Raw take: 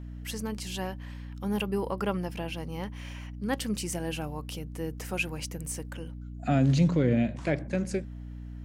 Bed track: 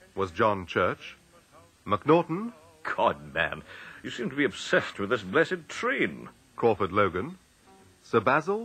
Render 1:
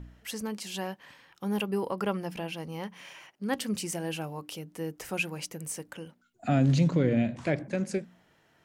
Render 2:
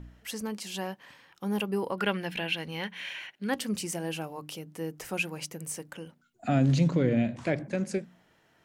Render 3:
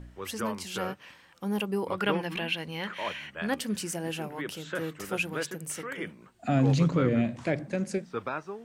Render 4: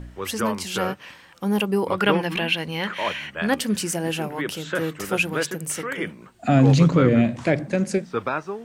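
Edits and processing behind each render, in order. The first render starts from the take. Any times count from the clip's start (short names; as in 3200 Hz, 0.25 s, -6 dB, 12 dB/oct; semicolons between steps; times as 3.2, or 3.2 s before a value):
de-hum 60 Hz, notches 5
1.98–3.5 spectral gain 1400–4400 Hz +10 dB; notches 50/100/150 Hz
add bed track -11 dB
gain +8 dB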